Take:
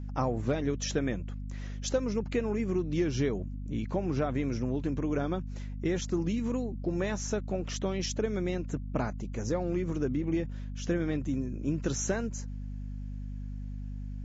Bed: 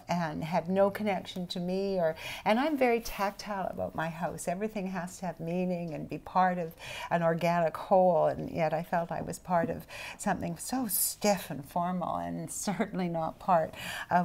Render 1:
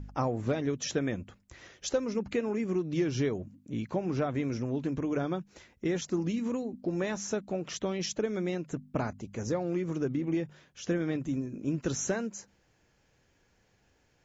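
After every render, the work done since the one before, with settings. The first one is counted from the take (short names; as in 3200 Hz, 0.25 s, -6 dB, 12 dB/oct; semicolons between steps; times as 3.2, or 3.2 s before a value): de-hum 50 Hz, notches 5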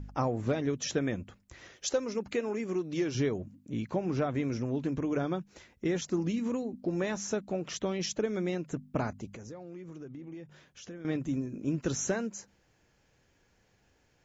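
1.76–3.15 tone controls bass -7 dB, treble +3 dB; 9.36–11.05 compressor 2.5:1, threshold -48 dBFS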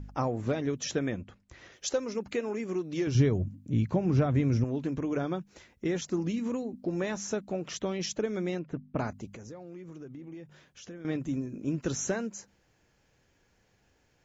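1.1–1.72 air absorption 57 m; 3.07–4.64 bell 86 Hz +14.5 dB 2 oct; 8.59–8.99 air absorption 270 m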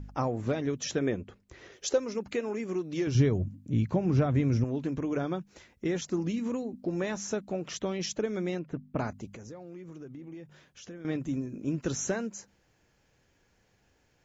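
1.01–1.98 bell 410 Hz +10 dB 0.49 oct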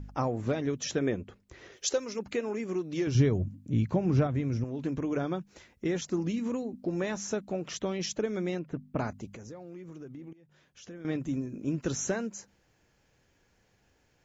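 1.77–2.19 tilt shelf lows -4 dB, about 1500 Hz; 4.27–4.79 resonator 170 Hz, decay 1.5 s, mix 40%; 10.33–10.98 fade in, from -20.5 dB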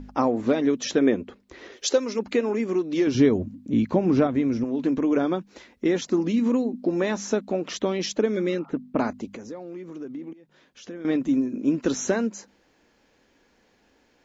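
8.38–8.69 spectral repair 670–1400 Hz; graphic EQ 125/250/500/1000/2000/4000 Hz -9/+12/+5/+6/+4/+7 dB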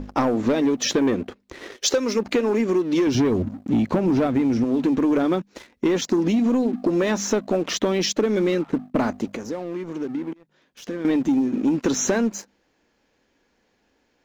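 sample leveller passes 2; compressor, threshold -17 dBFS, peak gain reduction 6 dB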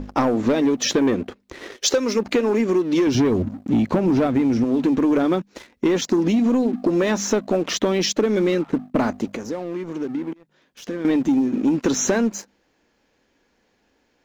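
gain +1.5 dB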